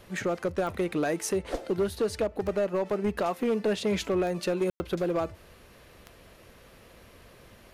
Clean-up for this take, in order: clip repair -21 dBFS; de-click; room tone fill 4.7–4.8

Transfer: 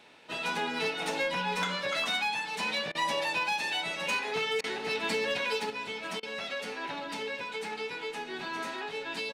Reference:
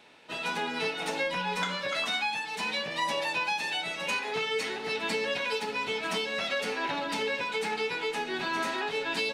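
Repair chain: clip repair -23.5 dBFS; interpolate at 2.92/4.61/6.2, 28 ms; inverse comb 0.761 s -19.5 dB; gain 0 dB, from 5.7 s +5.5 dB

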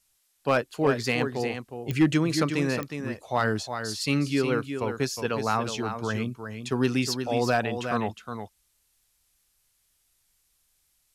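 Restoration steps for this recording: clip repair -13 dBFS; de-click; expander -62 dBFS, range -21 dB; inverse comb 0.362 s -8 dB

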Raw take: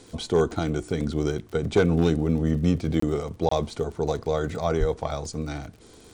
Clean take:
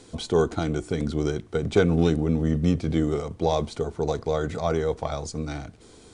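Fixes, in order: clip repair -11 dBFS; de-click; 4.79–4.91 HPF 140 Hz 24 dB/oct; interpolate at 3/3.49, 24 ms

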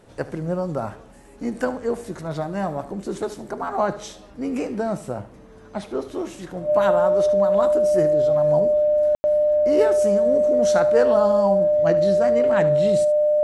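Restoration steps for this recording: notch 600 Hz, Q 30; room tone fill 9.15–9.24; inverse comb 74 ms -16 dB

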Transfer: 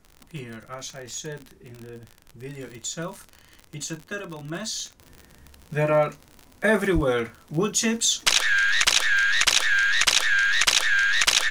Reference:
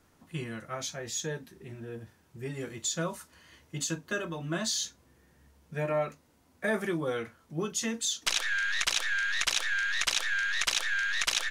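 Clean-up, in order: de-click; 6.94–7.06 HPF 140 Hz 24 dB/oct; expander -45 dBFS, range -21 dB; gain 0 dB, from 5 s -9 dB

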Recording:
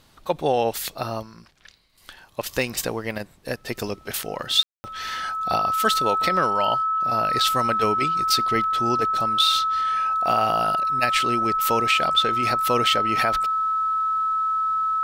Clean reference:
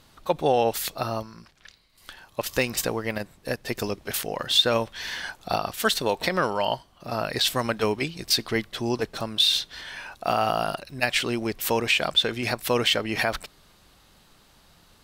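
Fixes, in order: notch 1300 Hz, Q 30; room tone fill 4.63–4.84

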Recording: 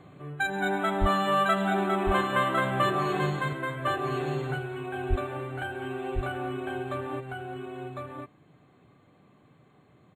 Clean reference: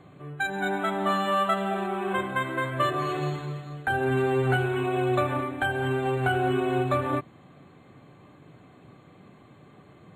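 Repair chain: 1–1.12 HPF 140 Hz 24 dB/oct; 5.09–5.21 HPF 140 Hz 24 dB/oct; inverse comb 1.054 s -4 dB; gain 0 dB, from 3.53 s +9 dB

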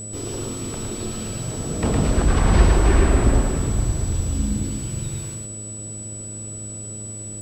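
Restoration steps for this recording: de-hum 105.8 Hz, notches 6; notch 7900 Hz, Q 30; inverse comb 0.111 s -3.5 dB

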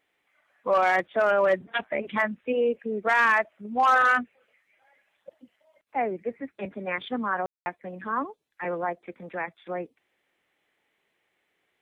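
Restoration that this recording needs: clip repair -14.5 dBFS; room tone fill 7.46–7.66

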